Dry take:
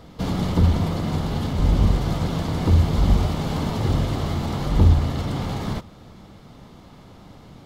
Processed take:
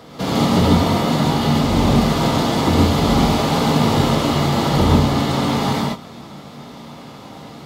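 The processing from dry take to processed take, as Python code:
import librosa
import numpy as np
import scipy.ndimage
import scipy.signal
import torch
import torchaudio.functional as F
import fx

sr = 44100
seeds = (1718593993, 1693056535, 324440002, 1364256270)

y = scipy.signal.sosfilt(scipy.signal.butter(2, 81.0, 'highpass', fs=sr, output='sos'), x)
y = fx.low_shelf(y, sr, hz=160.0, db=-12.0)
y = fx.rev_gated(y, sr, seeds[0], gate_ms=170, shape='rising', drr_db=-3.0)
y = F.gain(torch.from_numpy(y), 7.0).numpy()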